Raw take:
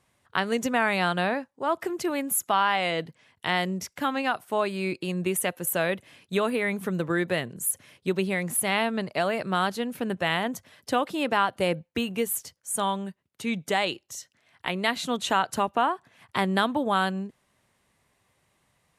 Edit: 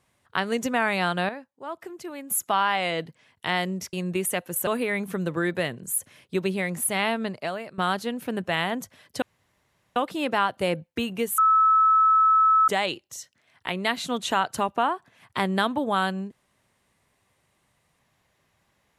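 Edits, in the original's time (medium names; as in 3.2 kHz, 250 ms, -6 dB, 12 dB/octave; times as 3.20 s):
1.29–2.30 s: gain -9 dB
3.93–5.04 s: delete
5.78–6.40 s: delete
8.94–9.51 s: fade out, to -16 dB
10.95 s: insert room tone 0.74 s
12.37–13.67 s: bleep 1.3 kHz -15 dBFS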